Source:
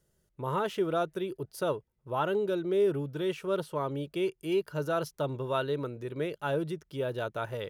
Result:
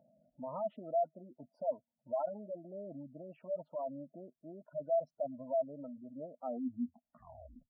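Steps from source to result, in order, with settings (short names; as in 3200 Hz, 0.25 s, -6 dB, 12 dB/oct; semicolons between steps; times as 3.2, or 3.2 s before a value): tape stop at the end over 1.35 s; low shelf 380 Hz -6 dB; in parallel at -1 dB: upward compressor, threshold -33 dBFS; on the sum: double band-pass 400 Hz, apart 1.4 oct; spectral gate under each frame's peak -15 dB strong; gain -1.5 dB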